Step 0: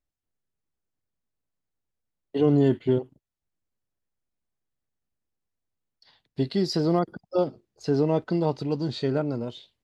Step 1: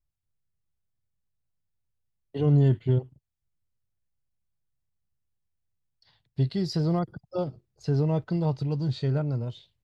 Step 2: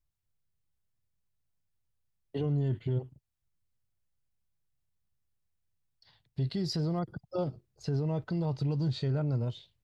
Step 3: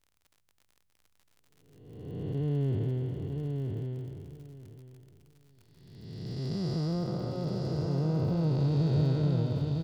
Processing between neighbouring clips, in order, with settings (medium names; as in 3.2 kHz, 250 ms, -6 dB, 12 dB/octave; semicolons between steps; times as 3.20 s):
resonant low shelf 180 Hz +10 dB, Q 1.5; trim -5 dB
peak limiter -24 dBFS, peak gain reduction 10.5 dB
spectral blur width 728 ms; crackle 49 per s -53 dBFS; on a send: feedback delay 954 ms, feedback 18%, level -4.5 dB; on the sum: trim +6 dB